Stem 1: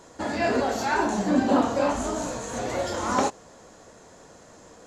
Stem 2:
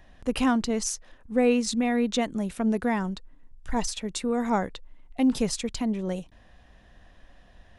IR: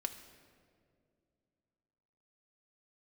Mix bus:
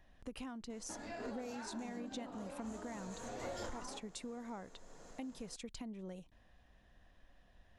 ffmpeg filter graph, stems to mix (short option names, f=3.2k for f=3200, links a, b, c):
-filter_complex "[0:a]alimiter=limit=-18dB:level=0:latency=1:release=54,acompressor=threshold=-32dB:ratio=10,adelay=700,volume=-5dB,asplit=2[a][b];[b]volume=-16.5dB[c];[1:a]acompressor=threshold=-31dB:ratio=12,volume=-11.5dB,asplit=2[d][e];[e]apad=whole_len=245209[f];[a][f]sidechaincompress=threshold=-56dB:ratio=8:attack=7.2:release=534[g];[2:a]atrim=start_sample=2205[h];[c][h]afir=irnorm=-1:irlink=0[i];[g][d][i]amix=inputs=3:normalize=0"